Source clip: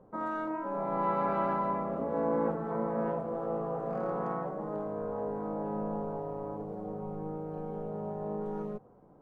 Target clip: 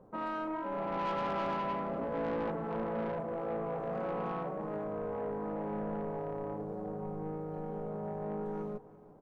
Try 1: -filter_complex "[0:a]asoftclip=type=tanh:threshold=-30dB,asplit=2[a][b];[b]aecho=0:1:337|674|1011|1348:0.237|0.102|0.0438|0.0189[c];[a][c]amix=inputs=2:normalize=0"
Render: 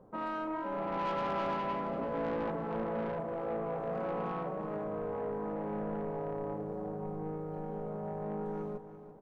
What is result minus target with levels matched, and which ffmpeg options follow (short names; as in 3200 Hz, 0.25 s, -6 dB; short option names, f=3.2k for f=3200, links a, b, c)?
echo-to-direct +7 dB
-filter_complex "[0:a]asoftclip=type=tanh:threshold=-30dB,asplit=2[a][b];[b]aecho=0:1:337|674|1011:0.106|0.0455|0.0196[c];[a][c]amix=inputs=2:normalize=0"